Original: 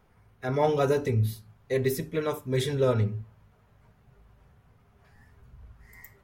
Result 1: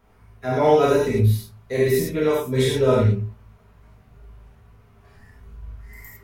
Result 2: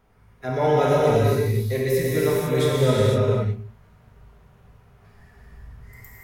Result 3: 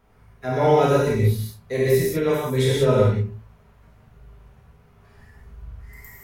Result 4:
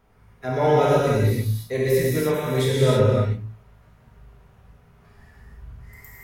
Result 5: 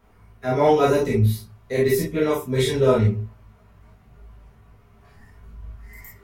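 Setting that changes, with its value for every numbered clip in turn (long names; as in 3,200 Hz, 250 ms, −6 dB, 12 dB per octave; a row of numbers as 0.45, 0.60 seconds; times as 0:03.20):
reverb whose tail is shaped and stops, gate: 130, 530, 210, 350, 80 milliseconds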